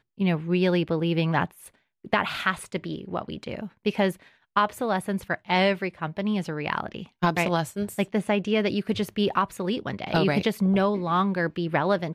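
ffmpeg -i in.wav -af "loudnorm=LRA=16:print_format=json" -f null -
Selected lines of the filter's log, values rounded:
"input_i" : "-25.8",
"input_tp" : "-8.6",
"input_lra" : "2.8",
"input_thresh" : "-36.0",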